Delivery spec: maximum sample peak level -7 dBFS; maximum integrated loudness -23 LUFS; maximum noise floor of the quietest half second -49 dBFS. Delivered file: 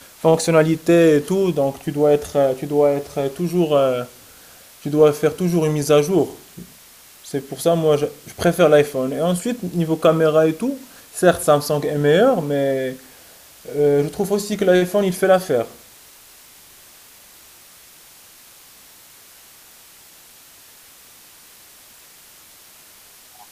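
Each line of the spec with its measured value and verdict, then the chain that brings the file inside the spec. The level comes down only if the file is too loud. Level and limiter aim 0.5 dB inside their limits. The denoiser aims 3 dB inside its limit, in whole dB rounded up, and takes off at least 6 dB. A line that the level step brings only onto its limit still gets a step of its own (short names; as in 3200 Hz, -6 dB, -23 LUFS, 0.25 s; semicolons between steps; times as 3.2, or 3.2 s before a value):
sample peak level -2.0 dBFS: fail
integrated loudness -18.0 LUFS: fail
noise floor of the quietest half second -46 dBFS: fail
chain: gain -5.5 dB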